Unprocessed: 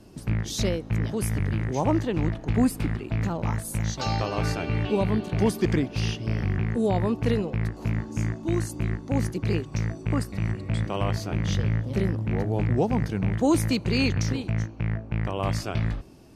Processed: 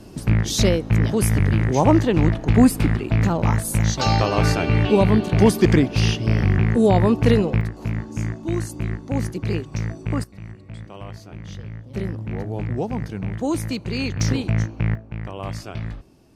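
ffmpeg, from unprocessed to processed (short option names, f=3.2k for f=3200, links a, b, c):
-af "asetnsamples=n=441:p=0,asendcmd='7.61 volume volume 1.5dB;10.24 volume volume -10dB;11.94 volume volume -2dB;14.2 volume volume 6dB;14.95 volume volume -3.5dB',volume=8dB"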